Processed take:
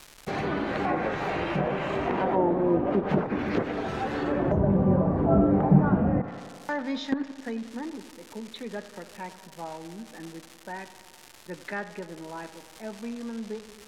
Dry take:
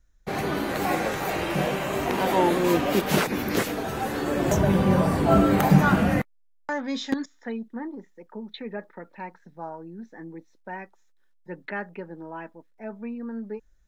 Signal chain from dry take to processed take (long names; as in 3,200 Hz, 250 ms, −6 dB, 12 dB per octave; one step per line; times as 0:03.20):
surface crackle 410 per second −32 dBFS
tape delay 91 ms, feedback 83%, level −14.5 dB
treble cut that deepens with the level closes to 780 Hz, closed at −18 dBFS
level −1.5 dB